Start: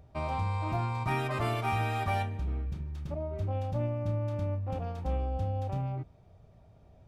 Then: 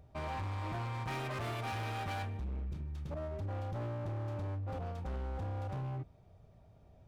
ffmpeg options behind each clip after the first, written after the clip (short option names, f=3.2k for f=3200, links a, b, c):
-af "asoftclip=type=hard:threshold=-33dB,volume=-3dB"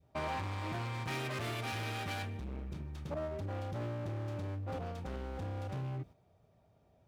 -af "highpass=f=180:p=1,agate=range=-8dB:threshold=-55dB:ratio=16:detection=peak,adynamicequalizer=threshold=0.00178:dfrequency=880:dqfactor=0.82:tfrequency=880:tqfactor=0.82:attack=5:release=100:ratio=0.375:range=4:mode=cutabove:tftype=bell,volume=5dB"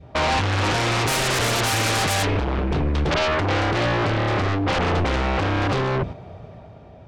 -filter_complex "[0:a]lowpass=3.5k,dynaudnorm=f=100:g=13:m=6dB,asplit=2[a][b];[b]aeval=exprs='0.0794*sin(PI/2*6.31*val(0)/0.0794)':c=same,volume=-4dB[c];[a][c]amix=inputs=2:normalize=0,volume=6.5dB"